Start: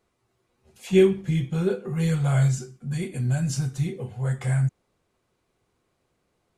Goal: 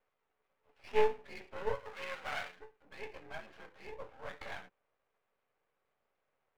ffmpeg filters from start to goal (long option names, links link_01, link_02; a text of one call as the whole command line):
ffmpeg -i in.wav -filter_complex "[0:a]highpass=frequency=400:width_type=q:width=0.5412,highpass=frequency=400:width_type=q:width=1.307,lowpass=frequency=2500:width_type=q:width=0.5176,lowpass=frequency=2500:width_type=q:width=0.7071,lowpass=frequency=2500:width_type=q:width=1.932,afreqshift=52,aeval=exprs='max(val(0),0)':channel_layout=same,asettb=1/sr,asplit=3[link_01][link_02][link_03];[link_01]atrim=end=1.754[link_04];[link_02]atrim=start=1.75:end=2.56,asetpts=PTS-STARTPTS,afade=type=in:duration=0.004:curve=qsin,afade=type=out:start_time=0.806:duration=0.004:curve=qsin,tiltshelf=frequency=920:gain=-5.5[link_05];[link_03]atrim=start=2.556[link_06];[link_04][link_05]acrossfade=duration=0.004:curve1=hsin:curve2=qsin[link_07];[link_07][link_06]acrossfade=duration=0.004:curve1=qsin:curve2=hsin,volume=-2.5dB" out.wav